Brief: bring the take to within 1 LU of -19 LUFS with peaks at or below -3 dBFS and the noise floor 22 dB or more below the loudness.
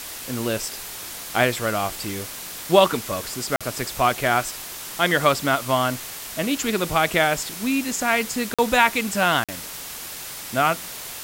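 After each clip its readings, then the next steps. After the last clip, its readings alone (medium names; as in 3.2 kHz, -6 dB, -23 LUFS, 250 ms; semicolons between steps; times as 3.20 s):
dropouts 3; longest dropout 46 ms; noise floor -35 dBFS; noise floor target -45 dBFS; loudness -23.0 LUFS; peak level -1.0 dBFS; loudness target -19.0 LUFS
-> interpolate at 3.56/8.54/9.44 s, 46 ms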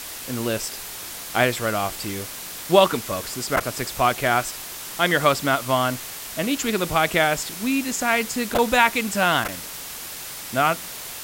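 dropouts 0; noise floor -35 dBFS; noise floor target -45 dBFS
-> noise reduction 10 dB, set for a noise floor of -35 dBFS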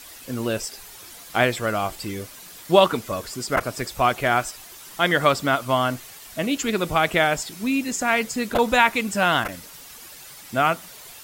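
noise floor -43 dBFS; noise floor target -45 dBFS
-> noise reduction 6 dB, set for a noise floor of -43 dBFS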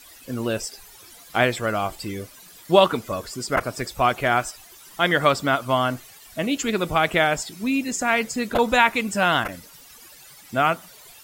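noise floor -47 dBFS; loudness -22.5 LUFS; peak level -1.5 dBFS; loudness target -19.0 LUFS
-> trim +3.5 dB; peak limiter -3 dBFS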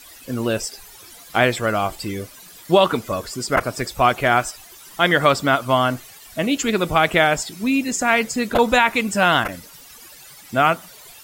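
loudness -19.5 LUFS; peak level -3.0 dBFS; noise floor -44 dBFS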